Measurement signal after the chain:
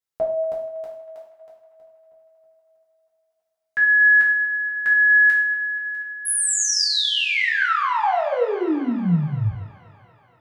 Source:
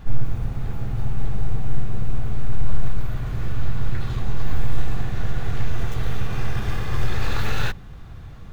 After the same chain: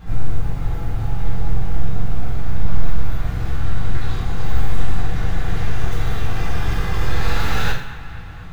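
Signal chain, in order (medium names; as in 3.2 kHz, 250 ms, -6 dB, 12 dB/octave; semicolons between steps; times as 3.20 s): feedback echo behind a band-pass 239 ms, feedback 69%, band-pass 1.5 kHz, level -14 dB; two-slope reverb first 0.53 s, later 1.9 s, from -20 dB, DRR -5 dB; trim -1.5 dB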